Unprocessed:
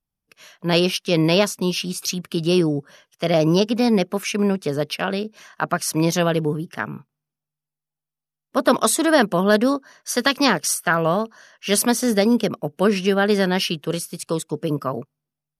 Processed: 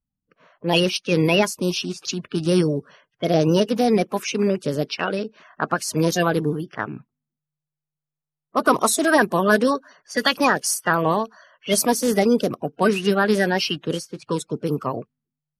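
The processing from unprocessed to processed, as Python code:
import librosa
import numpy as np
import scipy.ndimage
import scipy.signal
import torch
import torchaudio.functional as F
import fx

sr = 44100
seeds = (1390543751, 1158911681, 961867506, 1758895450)

y = fx.spec_quant(x, sr, step_db=30)
y = fx.env_lowpass(y, sr, base_hz=1100.0, full_db=-18.5)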